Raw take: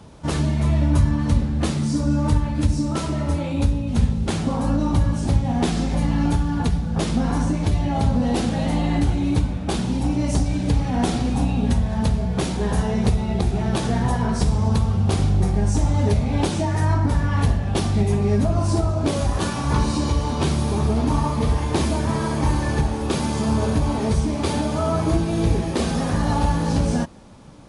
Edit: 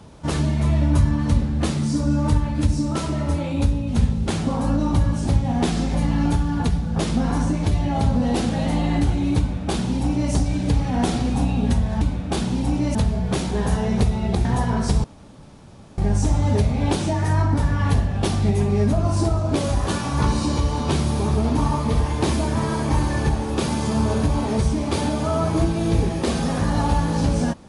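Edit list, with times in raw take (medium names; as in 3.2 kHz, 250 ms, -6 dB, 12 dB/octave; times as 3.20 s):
9.38–10.32 s: copy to 12.01 s
13.51–13.97 s: delete
14.56–15.50 s: room tone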